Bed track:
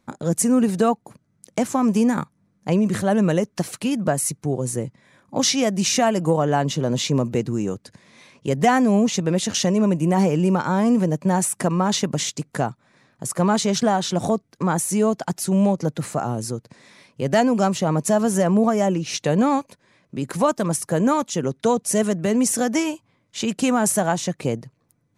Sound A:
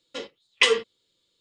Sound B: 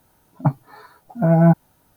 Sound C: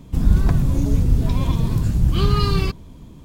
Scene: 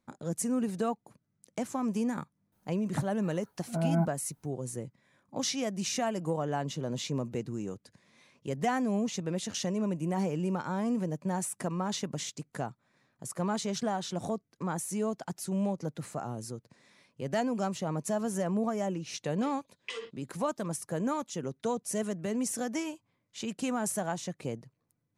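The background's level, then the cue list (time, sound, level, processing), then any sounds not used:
bed track −12.5 dB
0:02.52: mix in B −14.5 dB
0:19.27: mix in A −14.5 dB + downward compressor 5 to 1, threshold −20 dBFS
not used: C

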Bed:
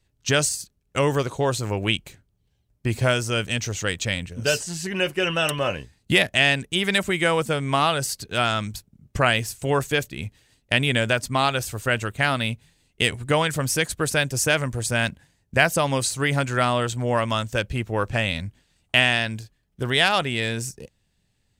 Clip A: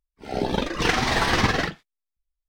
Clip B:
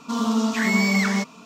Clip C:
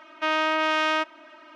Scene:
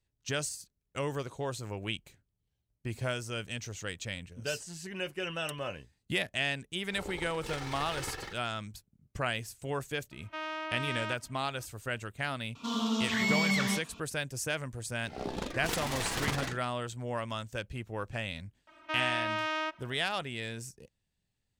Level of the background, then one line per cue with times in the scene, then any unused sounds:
bed −13 dB
0:06.64: mix in A −17 dB + lower of the sound and its delayed copy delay 2.3 ms
0:10.11: mix in C −14 dB
0:12.55: mix in B −9.5 dB + parametric band 3,300 Hz +11.5 dB 0.68 octaves
0:14.84: mix in A −11.5 dB + phase distortion by the signal itself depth 0.45 ms
0:18.67: mix in C −9.5 dB

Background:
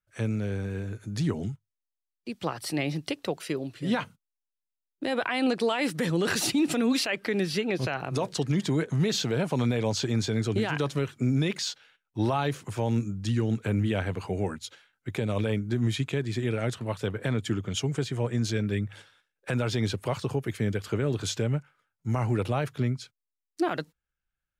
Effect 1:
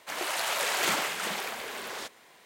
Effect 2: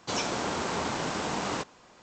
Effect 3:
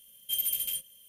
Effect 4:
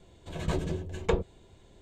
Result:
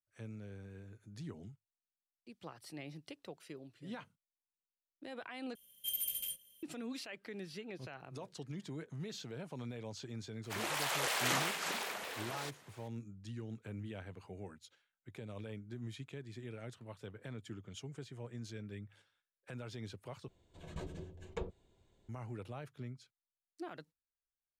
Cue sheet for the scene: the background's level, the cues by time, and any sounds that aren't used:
background −18.5 dB
0:05.55: overwrite with 3 −8 dB
0:10.43: mix in 1 −6 dB + pitch modulation by a square or saw wave saw down 3.1 Hz, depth 250 cents
0:20.28: overwrite with 4 −14.5 dB
not used: 2

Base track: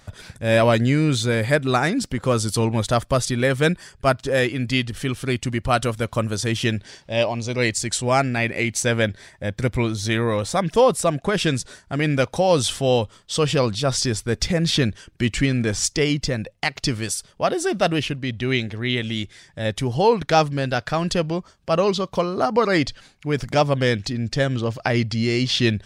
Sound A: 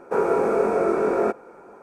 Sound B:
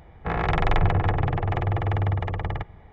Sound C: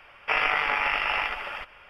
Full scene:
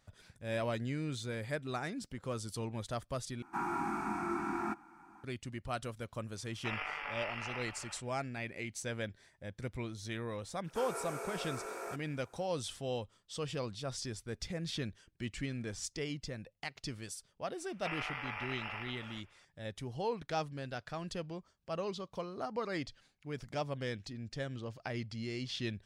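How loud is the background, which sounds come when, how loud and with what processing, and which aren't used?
base track −19 dB
0:03.42: overwrite with A −7.5 dB + elliptic band-stop filter 330–790 Hz
0:06.36: mix in C −16 dB
0:10.64: mix in A + first difference
0:17.56: mix in C −16.5 dB
not used: B

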